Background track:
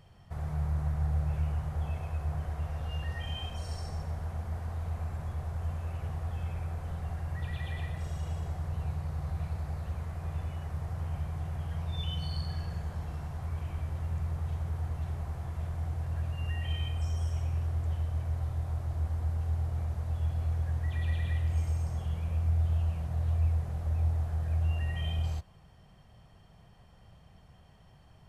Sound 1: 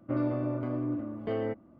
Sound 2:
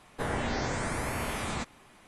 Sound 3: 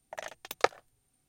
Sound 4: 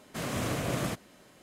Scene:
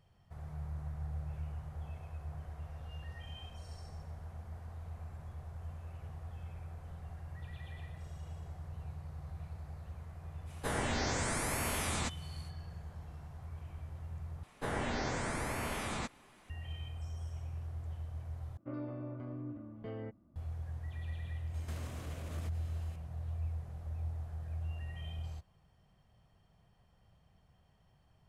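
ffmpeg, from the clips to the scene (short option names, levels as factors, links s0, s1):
-filter_complex "[2:a]asplit=2[s0][s1];[0:a]volume=0.299[s2];[s0]highshelf=f=4700:g=10[s3];[1:a]asubboost=boost=5.5:cutoff=200[s4];[4:a]acompressor=threshold=0.00631:ratio=6:attack=3.2:release=140:knee=1:detection=peak[s5];[s2]asplit=3[s6][s7][s8];[s6]atrim=end=14.434[s9];[s1]atrim=end=2.07,asetpts=PTS-STARTPTS,volume=0.596[s10];[s7]atrim=start=16.496:end=18.574[s11];[s4]atrim=end=1.79,asetpts=PTS-STARTPTS,volume=0.251[s12];[s8]atrim=start=20.356[s13];[s3]atrim=end=2.07,asetpts=PTS-STARTPTS,volume=0.631,afade=t=in:d=0.05,afade=t=out:st=2.02:d=0.05,adelay=10450[s14];[s5]atrim=end=1.42,asetpts=PTS-STARTPTS,volume=0.75,afade=t=in:d=0.004:c=hsin,afade=t=out:st=1.416:d=0.004:c=hsin,adelay=21540[s15];[s9][s10]acrossfade=d=0.004:c1=hsin:c2=hsin[s16];[s16][s11]acrossfade=d=0.004:c1=hsin:c2=hsin[s17];[s17][s12]acrossfade=d=0.004:c1=hsin:c2=hsin[s18];[s18][s13]acrossfade=d=0.004:c1=hsin:c2=hsin[s19];[s19][s14][s15]amix=inputs=3:normalize=0"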